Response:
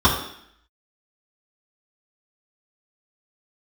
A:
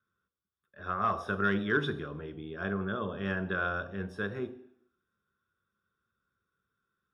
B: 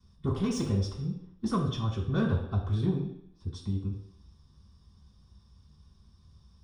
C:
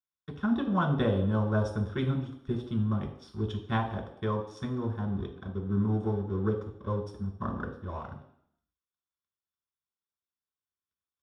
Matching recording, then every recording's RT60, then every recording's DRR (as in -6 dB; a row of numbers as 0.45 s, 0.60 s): B; 0.65 s, 0.65 s, 0.65 s; 9.0 dB, -8.5 dB, 0.0 dB